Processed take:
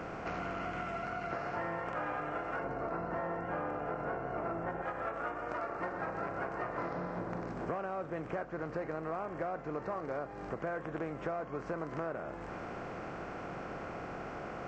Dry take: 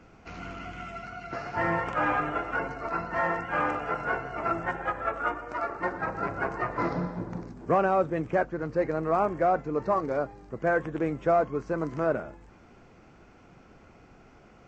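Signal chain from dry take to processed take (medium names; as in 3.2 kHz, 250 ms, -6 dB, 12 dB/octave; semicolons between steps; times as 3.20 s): spectral levelling over time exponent 0.6; 2.64–4.82 s: tilt shelf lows +5.5 dB, about 1.2 kHz; compression 6:1, threshold -32 dBFS, peak gain reduction 14.5 dB; trim -3 dB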